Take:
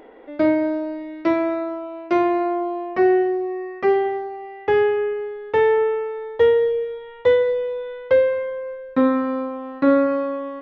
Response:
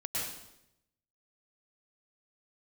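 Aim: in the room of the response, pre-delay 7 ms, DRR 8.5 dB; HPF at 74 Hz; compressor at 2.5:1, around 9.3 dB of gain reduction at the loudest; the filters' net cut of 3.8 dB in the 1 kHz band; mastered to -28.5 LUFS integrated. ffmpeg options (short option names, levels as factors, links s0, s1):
-filter_complex "[0:a]highpass=74,equalizer=f=1000:t=o:g=-5.5,acompressor=threshold=0.0447:ratio=2.5,asplit=2[s0][s1];[1:a]atrim=start_sample=2205,adelay=7[s2];[s1][s2]afir=irnorm=-1:irlink=0,volume=0.224[s3];[s0][s3]amix=inputs=2:normalize=0,volume=0.944"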